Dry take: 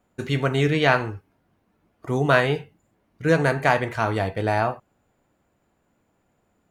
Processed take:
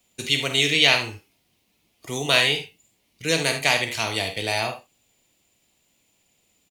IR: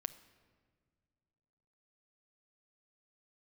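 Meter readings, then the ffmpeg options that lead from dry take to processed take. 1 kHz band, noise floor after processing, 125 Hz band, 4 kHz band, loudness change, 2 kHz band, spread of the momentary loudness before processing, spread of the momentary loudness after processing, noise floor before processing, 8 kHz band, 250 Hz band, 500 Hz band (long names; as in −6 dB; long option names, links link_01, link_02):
−5.5 dB, −68 dBFS, −8.5 dB, +13.5 dB, +1.5 dB, +2.0 dB, 11 LU, 14 LU, −70 dBFS, +15.0 dB, −6.0 dB, −5.0 dB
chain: -filter_complex "[0:a]acrossover=split=190[link_01][link_02];[link_01]alimiter=level_in=5dB:limit=-24dB:level=0:latency=1,volume=-5dB[link_03];[link_02]aecho=1:1:49|74:0.316|0.251[link_04];[link_03][link_04]amix=inputs=2:normalize=0,aexciter=amount=12.7:drive=5.8:freq=2300,highshelf=frequency=3400:gain=-7,volume=-5.5dB"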